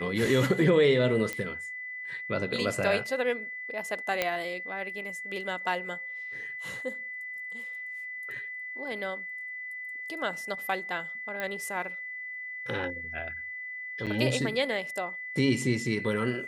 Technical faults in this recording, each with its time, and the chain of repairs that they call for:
whistle 2,000 Hz −36 dBFS
0:01.33: click −18 dBFS
0:04.22: click −11 dBFS
0:11.40: click −19 dBFS
0:14.06–0:14.07: drop-out 7.6 ms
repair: click removal
notch filter 2,000 Hz, Q 30
repair the gap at 0:14.06, 7.6 ms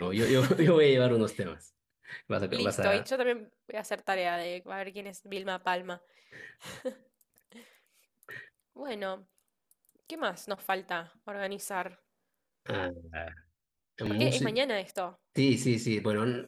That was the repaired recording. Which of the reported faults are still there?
none of them is left

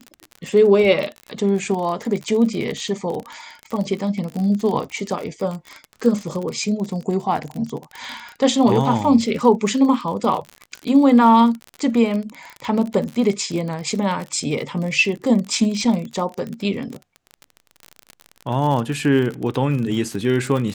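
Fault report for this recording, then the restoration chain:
surface crackle 40 per second −25 dBFS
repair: click removal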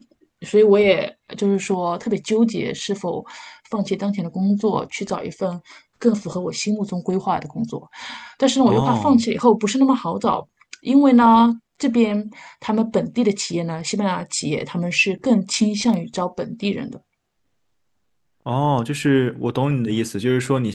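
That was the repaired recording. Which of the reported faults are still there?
none of them is left

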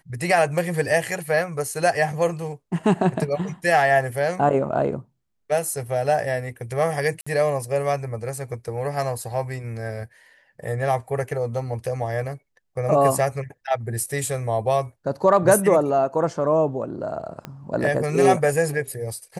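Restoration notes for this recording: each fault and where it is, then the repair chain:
0:07.21–0:07.26: drop-out 55 ms
0:17.45: click −18 dBFS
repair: click removal
repair the gap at 0:07.21, 55 ms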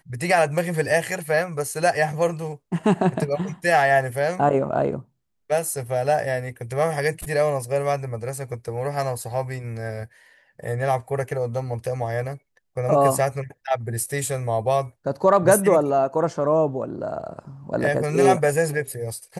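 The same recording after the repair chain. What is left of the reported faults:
0:17.45: click

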